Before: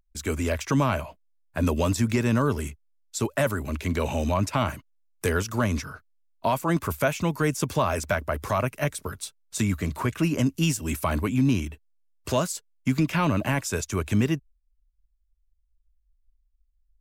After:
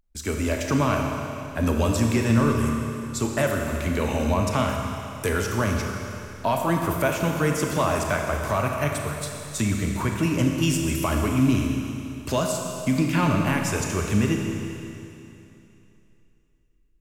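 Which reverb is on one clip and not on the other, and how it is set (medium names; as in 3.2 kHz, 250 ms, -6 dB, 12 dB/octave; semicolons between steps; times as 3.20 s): Schroeder reverb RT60 2.9 s, combs from 27 ms, DRR 1.5 dB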